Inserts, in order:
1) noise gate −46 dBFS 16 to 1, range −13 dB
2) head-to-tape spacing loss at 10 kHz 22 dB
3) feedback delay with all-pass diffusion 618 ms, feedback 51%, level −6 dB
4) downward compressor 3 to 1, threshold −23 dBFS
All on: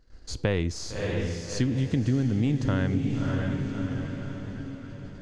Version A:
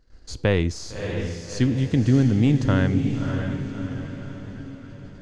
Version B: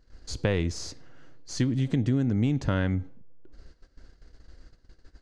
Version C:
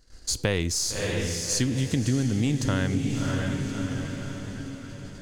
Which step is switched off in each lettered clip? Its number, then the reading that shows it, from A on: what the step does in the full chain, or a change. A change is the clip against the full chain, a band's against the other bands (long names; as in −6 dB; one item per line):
4, average gain reduction 2.0 dB
3, change in momentary loudness spread +2 LU
2, 8 kHz band +12.0 dB